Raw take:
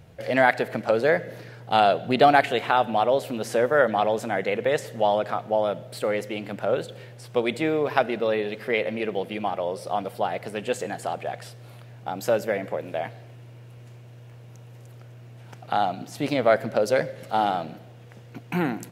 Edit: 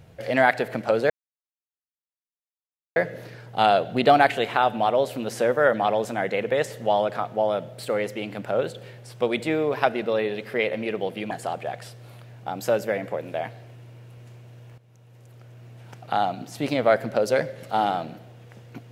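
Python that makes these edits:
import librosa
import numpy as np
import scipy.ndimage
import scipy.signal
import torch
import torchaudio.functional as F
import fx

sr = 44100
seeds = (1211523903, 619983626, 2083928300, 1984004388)

y = fx.edit(x, sr, fx.insert_silence(at_s=1.1, length_s=1.86),
    fx.cut(start_s=9.45, length_s=1.46),
    fx.fade_in_from(start_s=14.38, length_s=0.89, floor_db=-13.5), tone=tone)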